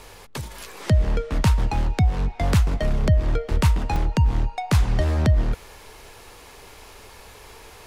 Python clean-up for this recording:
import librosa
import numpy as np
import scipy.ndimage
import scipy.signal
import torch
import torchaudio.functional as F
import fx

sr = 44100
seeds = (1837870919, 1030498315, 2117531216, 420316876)

y = fx.fix_interpolate(x, sr, at_s=(3.96,), length_ms=3.0)